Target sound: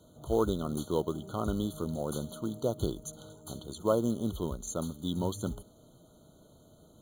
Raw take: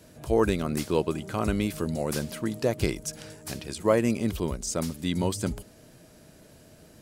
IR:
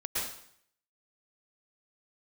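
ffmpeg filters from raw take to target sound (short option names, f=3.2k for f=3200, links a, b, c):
-af "acrusher=bits=5:mode=log:mix=0:aa=0.000001,afftfilt=real='re*eq(mod(floor(b*sr/1024/1500),2),0)':imag='im*eq(mod(floor(b*sr/1024/1500),2),0)':win_size=1024:overlap=0.75,volume=-5dB"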